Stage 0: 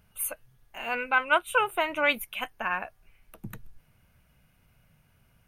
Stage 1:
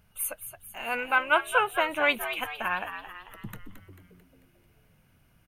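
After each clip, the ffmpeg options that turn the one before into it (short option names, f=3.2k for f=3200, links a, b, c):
-filter_complex "[0:a]asplit=7[a][b][c][d][e][f][g];[b]adelay=221,afreqshift=85,volume=-10dB[h];[c]adelay=442,afreqshift=170,volume=-15.8dB[i];[d]adelay=663,afreqshift=255,volume=-21.7dB[j];[e]adelay=884,afreqshift=340,volume=-27.5dB[k];[f]adelay=1105,afreqshift=425,volume=-33.4dB[l];[g]adelay=1326,afreqshift=510,volume=-39.2dB[m];[a][h][i][j][k][l][m]amix=inputs=7:normalize=0"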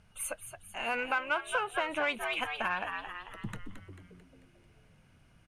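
-filter_complex "[0:a]asplit=2[a][b];[b]asoftclip=type=tanh:threshold=-25dB,volume=-9.5dB[c];[a][c]amix=inputs=2:normalize=0,lowpass=f=9.3k:w=0.5412,lowpass=f=9.3k:w=1.3066,acompressor=threshold=-27dB:ratio=4,volume=-1.5dB"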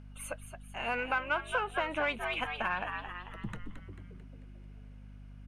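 -af "lowpass=f=3.9k:p=1,aeval=exprs='val(0)+0.00398*(sin(2*PI*50*n/s)+sin(2*PI*2*50*n/s)/2+sin(2*PI*3*50*n/s)/3+sin(2*PI*4*50*n/s)/4+sin(2*PI*5*50*n/s)/5)':c=same"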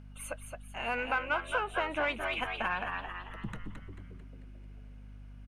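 -af "aecho=1:1:217:0.316"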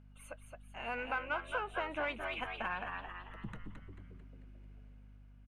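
-af "highshelf=f=5.2k:g=-7,bandreject=f=5.4k:w=29,dynaudnorm=f=150:g=9:m=3.5dB,volume=-8.5dB"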